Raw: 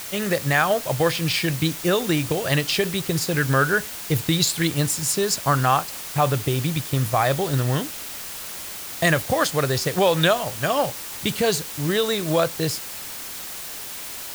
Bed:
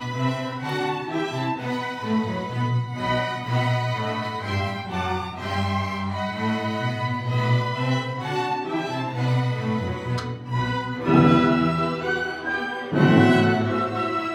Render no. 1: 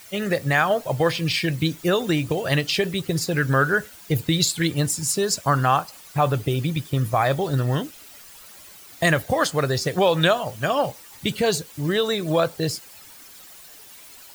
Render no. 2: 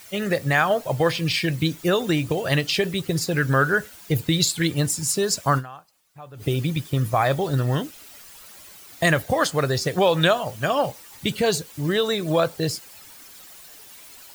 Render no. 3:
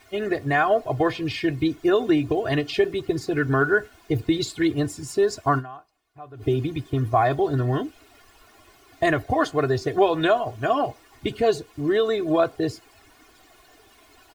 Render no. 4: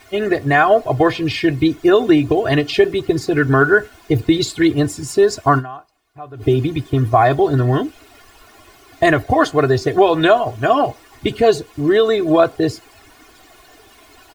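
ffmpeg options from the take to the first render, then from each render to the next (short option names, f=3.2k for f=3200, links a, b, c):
-af "afftdn=nr=13:nf=-34"
-filter_complex "[0:a]asplit=3[a][b][c];[a]atrim=end=5.86,asetpts=PTS-STARTPTS,afade=t=out:st=5.58:d=0.28:c=exp:silence=0.0794328[d];[b]atrim=start=5.86:end=6.15,asetpts=PTS-STARTPTS,volume=-22dB[e];[c]atrim=start=6.15,asetpts=PTS-STARTPTS,afade=t=in:d=0.28:c=exp:silence=0.0794328[f];[d][e][f]concat=n=3:v=0:a=1"
-af "lowpass=f=1.1k:p=1,aecho=1:1:2.8:0.85"
-af "volume=7.5dB,alimiter=limit=-1dB:level=0:latency=1"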